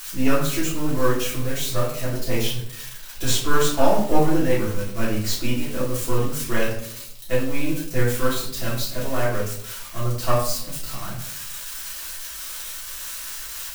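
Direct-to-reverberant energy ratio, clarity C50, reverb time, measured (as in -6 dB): -10.0 dB, 3.5 dB, 0.65 s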